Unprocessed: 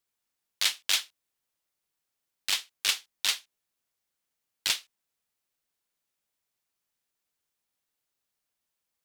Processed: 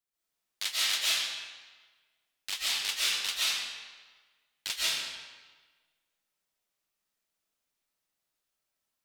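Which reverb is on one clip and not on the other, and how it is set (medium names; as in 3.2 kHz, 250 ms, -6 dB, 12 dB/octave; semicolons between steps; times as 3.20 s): algorithmic reverb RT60 1.4 s, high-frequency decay 0.85×, pre-delay 100 ms, DRR -8.5 dB; trim -8 dB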